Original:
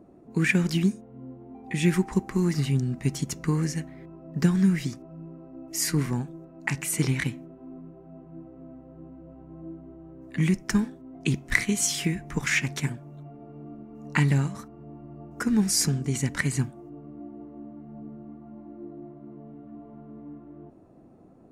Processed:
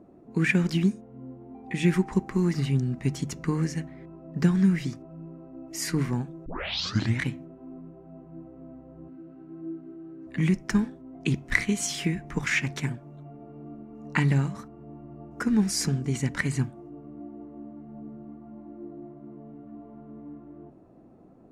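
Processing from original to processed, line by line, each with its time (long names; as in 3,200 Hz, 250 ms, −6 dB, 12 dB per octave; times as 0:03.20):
0:06.46: tape start 0.74 s
0:09.08–0:10.27: loudspeaker in its box 170–7,800 Hz, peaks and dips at 330 Hz +6 dB, 560 Hz −10 dB, 920 Hz −9 dB, 1,500 Hz +6 dB, 2,500 Hz +3 dB, 4,300 Hz +7 dB
whole clip: high-shelf EQ 6,600 Hz −10 dB; mains-hum notches 50/100/150 Hz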